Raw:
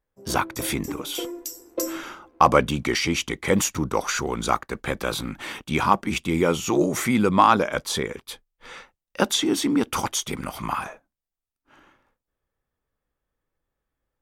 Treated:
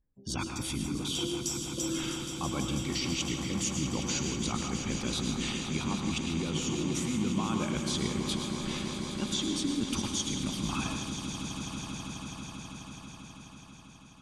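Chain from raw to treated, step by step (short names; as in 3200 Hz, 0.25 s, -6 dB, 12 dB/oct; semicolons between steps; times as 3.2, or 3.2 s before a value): spectral gate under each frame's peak -25 dB strong; LPF 9200 Hz 24 dB/oct; band shelf 900 Hz -14.5 dB 2.7 oct; reverse; compressor, threshold -38 dBFS, peak gain reduction 18 dB; reverse; swelling echo 0.163 s, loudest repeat 5, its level -12 dB; on a send at -5 dB: reverb RT60 0.70 s, pre-delay 98 ms; on the sum: gain +6 dB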